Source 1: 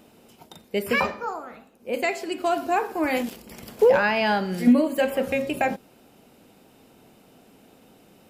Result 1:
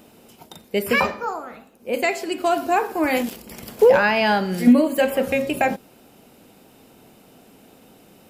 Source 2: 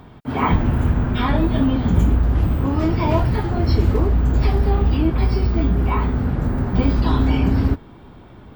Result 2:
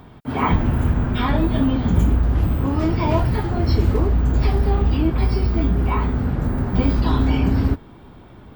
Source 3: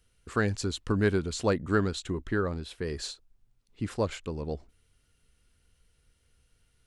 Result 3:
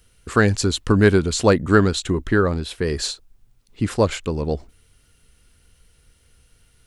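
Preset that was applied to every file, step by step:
high-shelf EQ 9,300 Hz +4.5 dB
loudness normalisation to −20 LKFS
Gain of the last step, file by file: +3.5, −1.0, +11.0 decibels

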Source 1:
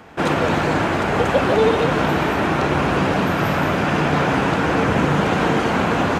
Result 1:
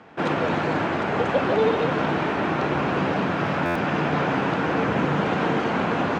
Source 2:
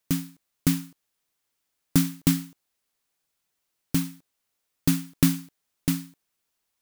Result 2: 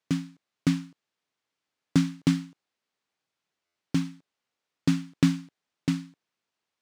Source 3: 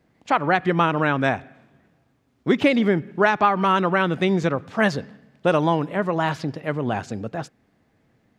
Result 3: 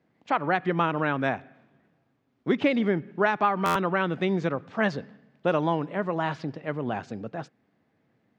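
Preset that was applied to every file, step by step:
high-pass filter 120 Hz 12 dB per octave
high-frequency loss of the air 110 metres
buffer that repeats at 0:03.65, samples 512, times 8
normalise the peak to −9 dBFS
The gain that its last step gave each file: −4.0, 0.0, −4.5 decibels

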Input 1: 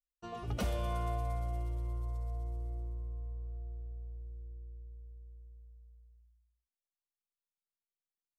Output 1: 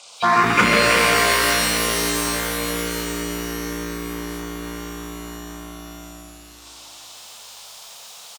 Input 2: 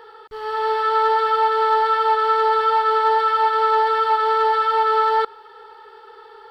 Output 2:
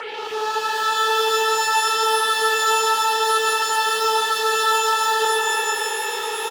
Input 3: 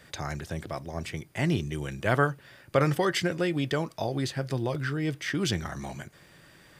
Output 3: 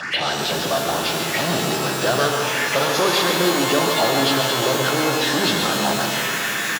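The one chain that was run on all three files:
hearing-aid frequency compression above 1,700 Hz 1.5 to 1
power curve on the samples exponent 0.5
soft clipping −16 dBFS
leveller curve on the samples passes 1
slap from a distant wall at 24 metres, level −6 dB
phaser swept by the level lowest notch 300 Hz, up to 2,200 Hz, full sweep at −19 dBFS
band-pass filter 180–3,100 Hz
spectral tilt +3 dB per octave
mains-hum notches 50/100/150/200/250/300/350 Hz
reverb with rising layers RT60 3.1 s, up +12 semitones, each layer −2 dB, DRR 4 dB
loudness normalisation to −19 LKFS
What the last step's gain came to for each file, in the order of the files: +22.0, −2.0, +5.0 decibels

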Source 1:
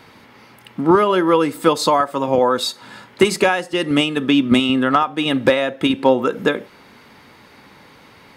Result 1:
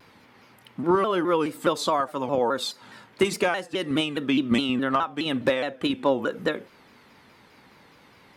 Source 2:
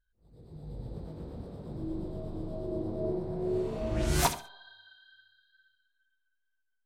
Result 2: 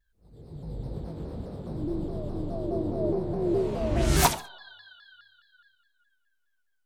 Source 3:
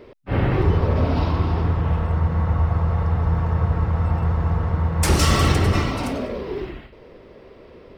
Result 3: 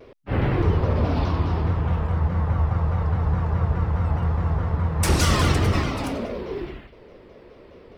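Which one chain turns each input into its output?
pitch modulation by a square or saw wave saw down 4.8 Hz, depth 160 cents
normalise the peak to −9 dBFS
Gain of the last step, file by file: −8.0, +5.0, −2.0 decibels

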